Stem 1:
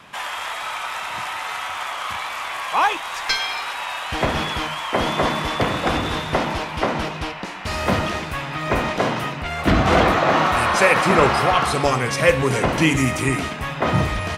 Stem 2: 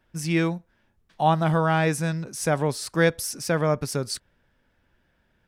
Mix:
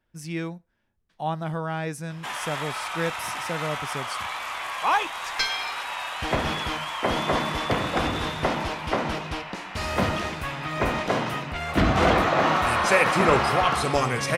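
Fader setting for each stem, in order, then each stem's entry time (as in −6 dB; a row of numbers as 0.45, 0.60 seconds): −4.0, −8.0 decibels; 2.10, 0.00 seconds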